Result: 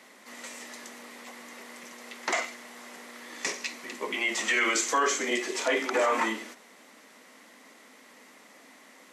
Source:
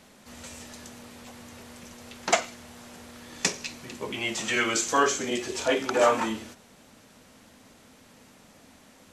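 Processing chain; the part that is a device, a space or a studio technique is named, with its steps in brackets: laptop speaker (high-pass 250 Hz 24 dB/octave; peaking EQ 1.1 kHz +5 dB 0.31 oct; peaking EQ 2 kHz +11 dB 0.27 oct; peak limiter -16 dBFS, peak gain reduction 12 dB)

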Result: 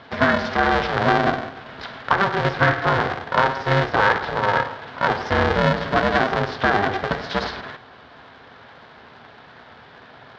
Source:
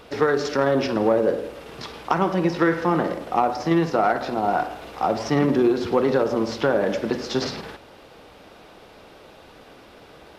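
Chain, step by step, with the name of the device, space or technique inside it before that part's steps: ring modulator pedal into a guitar cabinet (polarity switched at an audio rate 200 Hz; cabinet simulation 88–4100 Hz, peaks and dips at 180 Hz -5 dB, 320 Hz -9 dB, 560 Hz -4 dB, 1.6 kHz +6 dB, 2.6 kHz -5 dB); trim +3 dB

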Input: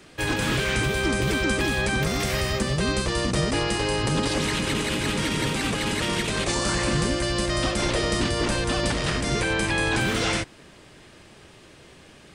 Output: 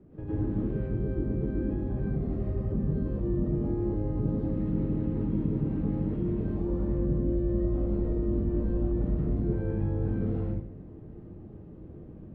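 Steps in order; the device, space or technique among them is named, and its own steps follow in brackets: television next door (compression, threshold -31 dBFS, peak gain reduction 11 dB; low-pass 300 Hz 12 dB/octave; reverberation RT60 0.60 s, pre-delay 99 ms, DRR -7.5 dB)

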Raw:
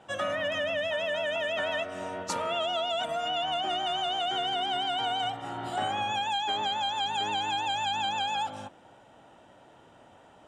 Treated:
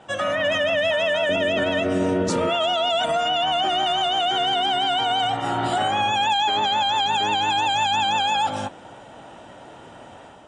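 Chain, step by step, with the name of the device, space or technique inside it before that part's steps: 1.29–2.50 s: resonant low shelf 540 Hz +10.5 dB, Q 1.5; 6.24–7.50 s: low-pass 7.8 kHz 12 dB/octave; low-bitrate web radio (level rider gain up to 6 dB; peak limiter -20.5 dBFS, peak gain reduction 9.5 dB; trim +7 dB; MP3 40 kbps 24 kHz)

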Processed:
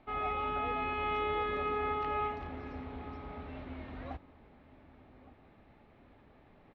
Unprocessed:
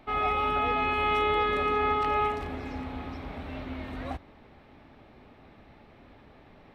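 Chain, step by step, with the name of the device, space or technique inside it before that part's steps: shout across a valley (distance through air 180 m; echo from a far wall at 200 m, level -17 dB); trim -6.5 dB

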